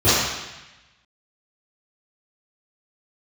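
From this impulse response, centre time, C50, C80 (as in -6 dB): 0.102 s, -3.0 dB, 0.5 dB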